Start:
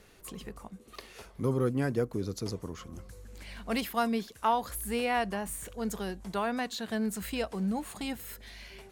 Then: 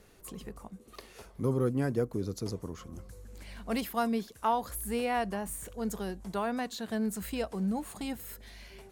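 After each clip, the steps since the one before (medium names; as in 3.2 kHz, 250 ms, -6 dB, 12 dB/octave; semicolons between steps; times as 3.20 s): peaking EQ 2.7 kHz -4.5 dB 2.3 oct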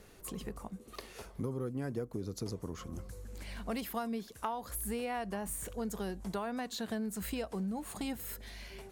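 compression 6:1, threshold -36 dBFS, peak gain reduction 12.5 dB; trim +2 dB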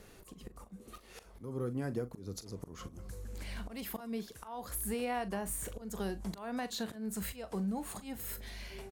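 slow attack 197 ms; doubling 41 ms -13.5 dB; trim +1 dB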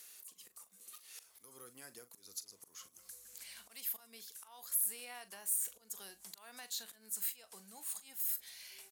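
differentiator; tape noise reduction on one side only encoder only; trim +3 dB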